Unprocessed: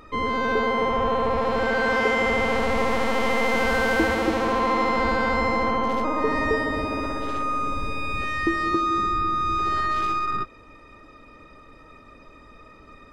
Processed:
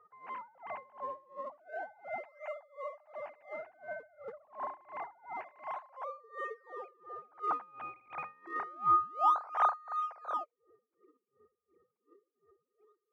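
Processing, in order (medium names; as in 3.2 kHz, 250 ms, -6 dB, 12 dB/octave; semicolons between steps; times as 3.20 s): formants replaced by sine waves; in parallel at -9.5 dB: decimation with a swept rate 38×, swing 160% 0.28 Hz; on the sum: band-pass sweep 780 Hz -> 360 Hz, 9.78–11.05 s; logarithmic tremolo 2.8 Hz, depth 26 dB; trim -1.5 dB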